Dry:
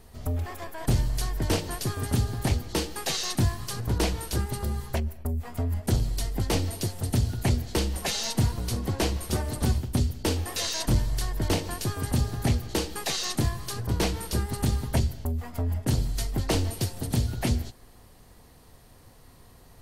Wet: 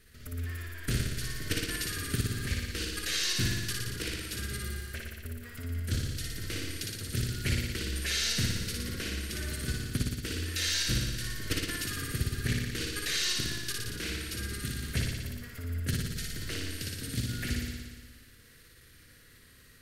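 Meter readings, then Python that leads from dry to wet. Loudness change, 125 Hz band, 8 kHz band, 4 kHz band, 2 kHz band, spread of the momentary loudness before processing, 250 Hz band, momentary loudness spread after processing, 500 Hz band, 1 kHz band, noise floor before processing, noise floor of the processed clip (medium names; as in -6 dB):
-4.5 dB, -7.0 dB, -1.5 dB, 0.0 dB, +2.5 dB, 5 LU, -7.0 dB, 10 LU, -10.5 dB, -12.5 dB, -53 dBFS, -56 dBFS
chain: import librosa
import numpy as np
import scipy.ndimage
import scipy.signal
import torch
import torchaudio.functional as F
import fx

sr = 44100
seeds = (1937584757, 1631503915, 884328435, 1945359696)

y = fx.level_steps(x, sr, step_db=11)
y = fx.curve_eq(y, sr, hz=(480.0, 850.0, 1500.0, 6100.0), db=(0, -19, 12, 6))
y = fx.room_flutter(y, sr, wall_m=10.0, rt60_s=1.4)
y = F.gain(torch.from_numpy(y), -6.5).numpy()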